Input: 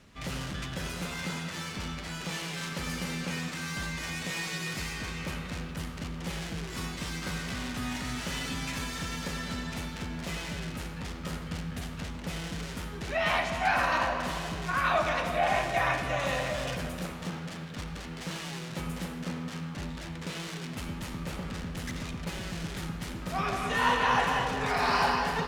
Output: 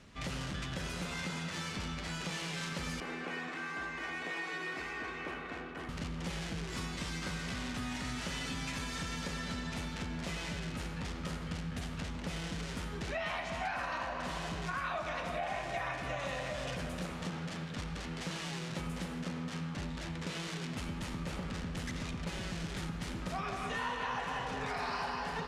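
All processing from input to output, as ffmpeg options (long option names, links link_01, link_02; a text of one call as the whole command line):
ffmpeg -i in.wav -filter_complex "[0:a]asettb=1/sr,asplit=3[link_01][link_02][link_03];[link_01]atrim=end=3.004[link_04];[link_02]atrim=start=3:end=5.89,asetpts=PTS-STARTPTS,afade=type=in:duration=0.004:curve=qsin,afade=type=out:start_time=2.886:duration=0.004:curve=qsin,acrossover=split=230 2500:gain=0.126 1 0.141[link_05][link_06][link_07];[link_05][link_06][link_07]amix=inputs=3:normalize=0,aecho=1:1:2.7:0.47,atrim=end_sample=127449[link_08];[link_03]atrim=start=5.886[link_09];[link_04][link_08]acrossfade=duration=0.004:curve1=hsin:curve2=qsin[link_10];[link_10][link_09]acrossfade=duration=0.004:curve1=qsin:curve2=hsin,lowpass=9700,acompressor=threshold=-35dB:ratio=5" out.wav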